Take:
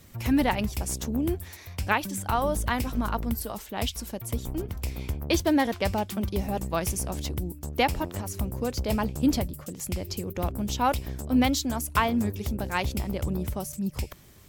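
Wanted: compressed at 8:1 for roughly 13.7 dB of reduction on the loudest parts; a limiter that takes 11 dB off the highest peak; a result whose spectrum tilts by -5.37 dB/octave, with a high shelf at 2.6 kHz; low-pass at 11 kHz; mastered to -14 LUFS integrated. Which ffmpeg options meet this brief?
-af "lowpass=11000,highshelf=f=2600:g=-3.5,acompressor=threshold=0.0224:ratio=8,volume=20,alimiter=limit=0.631:level=0:latency=1"

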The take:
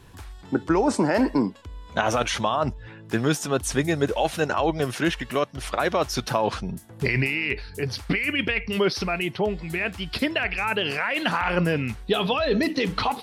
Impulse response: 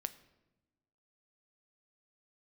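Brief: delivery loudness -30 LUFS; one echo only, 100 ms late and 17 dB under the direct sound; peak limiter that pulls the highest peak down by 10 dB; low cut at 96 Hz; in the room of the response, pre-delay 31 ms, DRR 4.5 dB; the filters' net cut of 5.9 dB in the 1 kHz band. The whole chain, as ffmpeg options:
-filter_complex "[0:a]highpass=96,equalizer=f=1000:t=o:g=-8,alimiter=limit=0.112:level=0:latency=1,aecho=1:1:100:0.141,asplit=2[s0][s1];[1:a]atrim=start_sample=2205,adelay=31[s2];[s1][s2]afir=irnorm=-1:irlink=0,volume=0.708[s3];[s0][s3]amix=inputs=2:normalize=0,volume=0.794"

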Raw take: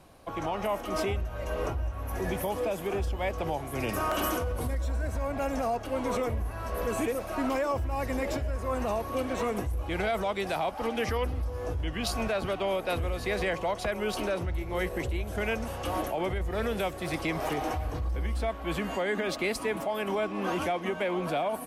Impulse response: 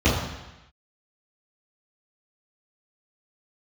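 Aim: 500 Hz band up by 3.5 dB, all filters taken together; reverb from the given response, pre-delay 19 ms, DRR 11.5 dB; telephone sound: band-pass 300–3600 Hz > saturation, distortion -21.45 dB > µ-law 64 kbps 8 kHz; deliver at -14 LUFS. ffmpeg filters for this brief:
-filter_complex "[0:a]equalizer=f=500:t=o:g=5,asplit=2[s0][s1];[1:a]atrim=start_sample=2205,adelay=19[s2];[s1][s2]afir=irnorm=-1:irlink=0,volume=0.0299[s3];[s0][s3]amix=inputs=2:normalize=0,highpass=300,lowpass=3600,asoftclip=threshold=0.112,volume=6.68" -ar 8000 -c:a pcm_mulaw

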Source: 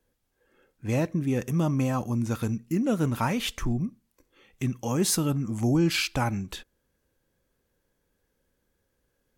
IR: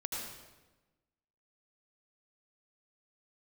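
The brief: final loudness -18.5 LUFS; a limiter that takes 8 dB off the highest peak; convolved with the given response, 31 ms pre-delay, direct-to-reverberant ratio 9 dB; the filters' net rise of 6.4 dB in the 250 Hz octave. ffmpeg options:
-filter_complex "[0:a]equalizer=f=250:t=o:g=8,alimiter=limit=0.126:level=0:latency=1,asplit=2[s0][s1];[1:a]atrim=start_sample=2205,adelay=31[s2];[s1][s2]afir=irnorm=-1:irlink=0,volume=0.282[s3];[s0][s3]amix=inputs=2:normalize=0,volume=2.37"

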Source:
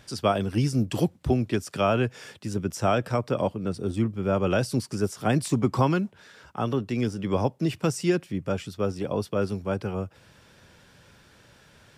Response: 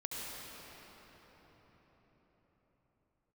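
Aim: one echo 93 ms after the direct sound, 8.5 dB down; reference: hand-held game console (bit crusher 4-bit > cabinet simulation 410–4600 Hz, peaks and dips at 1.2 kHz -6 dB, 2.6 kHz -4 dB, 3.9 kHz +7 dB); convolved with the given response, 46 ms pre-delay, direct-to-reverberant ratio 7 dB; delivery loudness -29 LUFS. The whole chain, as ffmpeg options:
-filter_complex "[0:a]aecho=1:1:93:0.376,asplit=2[s0][s1];[1:a]atrim=start_sample=2205,adelay=46[s2];[s1][s2]afir=irnorm=-1:irlink=0,volume=0.355[s3];[s0][s3]amix=inputs=2:normalize=0,acrusher=bits=3:mix=0:aa=0.000001,highpass=410,equalizer=f=1200:t=q:w=4:g=-6,equalizer=f=2600:t=q:w=4:g=-4,equalizer=f=3900:t=q:w=4:g=7,lowpass=f=4600:w=0.5412,lowpass=f=4600:w=1.3066,volume=0.891"

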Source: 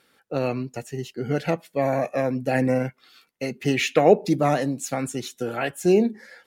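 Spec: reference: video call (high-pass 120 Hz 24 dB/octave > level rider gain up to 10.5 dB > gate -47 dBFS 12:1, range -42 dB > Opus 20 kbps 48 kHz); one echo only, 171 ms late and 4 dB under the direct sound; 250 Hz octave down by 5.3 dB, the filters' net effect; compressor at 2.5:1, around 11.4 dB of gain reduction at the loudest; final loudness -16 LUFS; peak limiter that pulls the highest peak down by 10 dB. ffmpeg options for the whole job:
-af "equalizer=f=250:t=o:g=-7,acompressor=threshold=0.0355:ratio=2.5,alimiter=limit=0.0631:level=0:latency=1,highpass=f=120:w=0.5412,highpass=f=120:w=1.3066,aecho=1:1:171:0.631,dynaudnorm=m=3.35,agate=range=0.00794:threshold=0.00447:ratio=12,volume=7.94" -ar 48000 -c:a libopus -b:a 20k

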